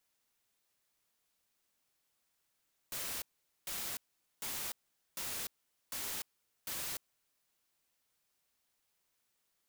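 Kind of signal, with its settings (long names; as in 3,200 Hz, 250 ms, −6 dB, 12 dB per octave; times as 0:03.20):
noise bursts white, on 0.30 s, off 0.45 s, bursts 6, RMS −40 dBFS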